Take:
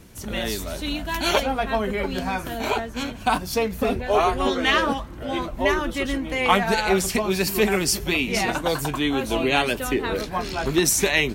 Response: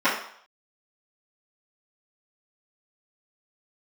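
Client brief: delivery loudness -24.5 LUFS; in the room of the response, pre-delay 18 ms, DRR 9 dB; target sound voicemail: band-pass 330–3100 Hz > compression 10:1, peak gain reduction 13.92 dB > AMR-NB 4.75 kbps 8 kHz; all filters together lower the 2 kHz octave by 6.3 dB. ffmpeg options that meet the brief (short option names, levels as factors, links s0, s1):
-filter_complex "[0:a]equalizer=f=2000:t=o:g=-7,asplit=2[s0][s1];[1:a]atrim=start_sample=2205,adelay=18[s2];[s1][s2]afir=irnorm=-1:irlink=0,volume=0.0422[s3];[s0][s3]amix=inputs=2:normalize=0,highpass=330,lowpass=3100,acompressor=threshold=0.0398:ratio=10,volume=3.55" -ar 8000 -c:a libopencore_amrnb -b:a 4750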